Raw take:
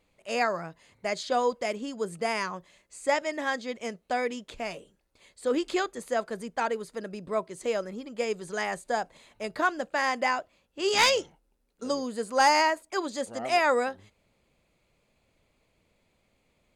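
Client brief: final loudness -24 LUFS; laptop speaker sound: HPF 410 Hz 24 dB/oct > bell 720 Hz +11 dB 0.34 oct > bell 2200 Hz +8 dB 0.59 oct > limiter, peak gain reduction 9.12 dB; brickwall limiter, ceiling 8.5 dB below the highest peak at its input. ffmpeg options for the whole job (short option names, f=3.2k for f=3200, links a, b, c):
-af "alimiter=limit=-21.5dB:level=0:latency=1,highpass=f=410:w=0.5412,highpass=f=410:w=1.3066,equalizer=f=720:t=o:w=0.34:g=11,equalizer=f=2.2k:t=o:w=0.59:g=8,volume=8dB,alimiter=limit=-13dB:level=0:latency=1"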